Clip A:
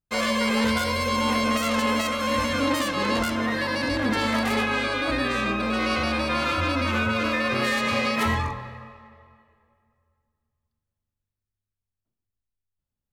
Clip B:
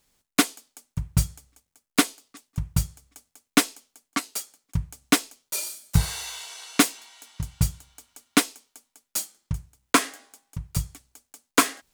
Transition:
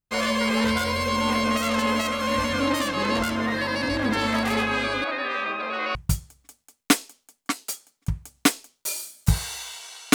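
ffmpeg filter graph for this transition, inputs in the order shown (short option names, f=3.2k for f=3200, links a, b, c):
-filter_complex "[0:a]asettb=1/sr,asplit=3[a][b][c];[a]atrim=end=5.044[d];[b]atrim=start=5.04:end=5.95,asetpts=PTS-STARTPTS,afade=t=in:d=0.004:c=qsin,afade=t=out:st=0.906:d=0.004:c=qsin,highpass=530,lowpass=3.2k[e];[c]atrim=start=5.946[f];[d][e]acrossfade=d=0.004:c1=hsin:c2=qsin[g];[g][f]acrossfade=d=0.004:c1=qsin:c2=hsin,apad=whole_dur=10.14,atrim=end=10.14,atrim=end=5.952[h];[1:a]atrim=start=2.618:end=6.81[i];[h][i]acrossfade=d=0.004:c1=hsin:c2=hsin"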